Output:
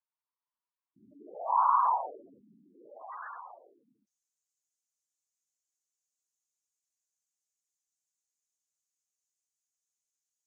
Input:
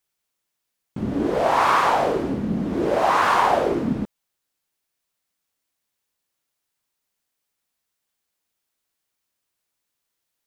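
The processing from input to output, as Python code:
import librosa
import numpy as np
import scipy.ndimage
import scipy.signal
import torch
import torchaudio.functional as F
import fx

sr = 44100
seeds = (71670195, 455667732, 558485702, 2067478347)

y = fx.spec_gate(x, sr, threshold_db=-10, keep='strong')
y = fx.filter_sweep_bandpass(y, sr, from_hz=1000.0, to_hz=6700.0, start_s=2.22, end_s=4.17, q=5.7)
y = fx.tilt_eq(y, sr, slope=2.0)
y = y * librosa.db_to_amplitude(-2.0)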